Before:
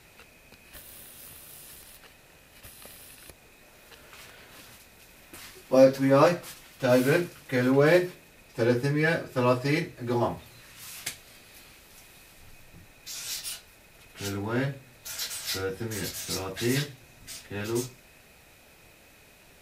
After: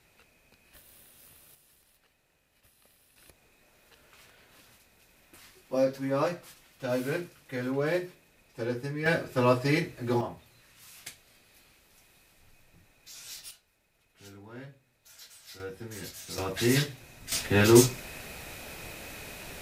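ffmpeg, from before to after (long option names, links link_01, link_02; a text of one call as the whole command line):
ffmpeg -i in.wav -af "asetnsamples=nb_out_samples=441:pad=0,asendcmd='1.55 volume volume -16dB;3.16 volume volume -8.5dB;9.06 volume volume 0dB;10.21 volume volume -9dB;13.51 volume volume -17dB;15.6 volume volume -8dB;16.38 volume volume 2dB;17.32 volume volume 12dB',volume=-9dB" out.wav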